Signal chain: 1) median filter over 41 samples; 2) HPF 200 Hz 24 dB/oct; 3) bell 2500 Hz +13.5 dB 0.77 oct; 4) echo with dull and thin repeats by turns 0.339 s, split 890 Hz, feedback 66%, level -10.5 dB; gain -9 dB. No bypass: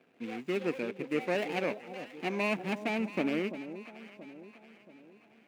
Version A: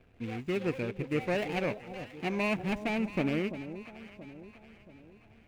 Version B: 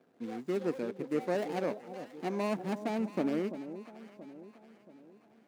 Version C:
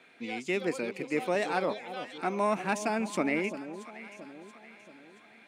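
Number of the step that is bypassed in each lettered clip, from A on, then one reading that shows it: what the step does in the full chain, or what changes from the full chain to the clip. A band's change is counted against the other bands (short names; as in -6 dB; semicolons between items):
2, 125 Hz band +7.0 dB; 3, 2 kHz band -8.5 dB; 1, 8 kHz band +9.5 dB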